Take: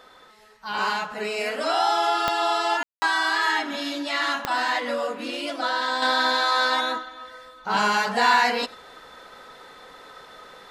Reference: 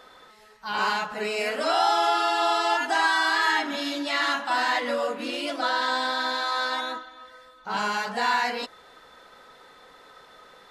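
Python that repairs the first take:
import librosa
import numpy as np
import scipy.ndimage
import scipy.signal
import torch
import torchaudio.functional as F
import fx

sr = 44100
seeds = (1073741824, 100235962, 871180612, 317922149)

y = fx.fix_declick_ar(x, sr, threshold=10.0)
y = fx.fix_ambience(y, sr, seeds[0], print_start_s=0.13, print_end_s=0.63, start_s=2.83, end_s=3.02)
y = fx.fix_echo_inverse(y, sr, delay_ms=92, level_db=-23.0)
y = fx.gain(y, sr, db=fx.steps((0.0, 0.0), (6.02, -5.5)))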